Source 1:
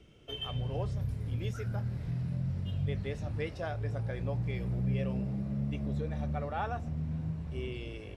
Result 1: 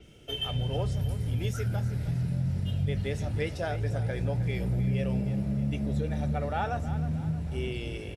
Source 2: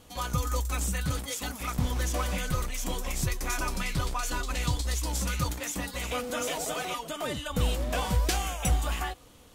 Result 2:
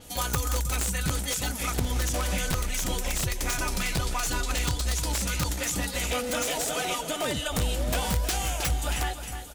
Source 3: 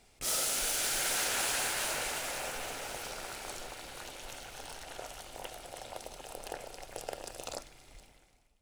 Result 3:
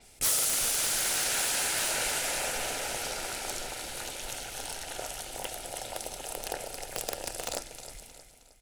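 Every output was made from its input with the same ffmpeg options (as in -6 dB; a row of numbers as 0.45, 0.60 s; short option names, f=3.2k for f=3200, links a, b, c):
-filter_complex "[0:a]equalizer=f=11k:t=o:w=1.4:g=9.5,asplit=2[a][b];[b]aecho=0:1:313|626|939|1252:0.224|0.094|0.0395|0.0166[c];[a][c]amix=inputs=2:normalize=0,acompressor=threshold=-28dB:ratio=4,bandreject=f=1.1k:w=6.1,aeval=exprs='(mod(12.6*val(0)+1,2)-1)/12.6':c=same,adynamicequalizer=threshold=0.00447:dfrequency=7800:dqfactor=0.7:tfrequency=7800:tqfactor=0.7:attack=5:release=100:ratio=0.375:range=3.5:mode=cutabove:tftype=highshelf,volume=5dB"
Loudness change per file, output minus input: +5.0, +2.5, +5.0 LU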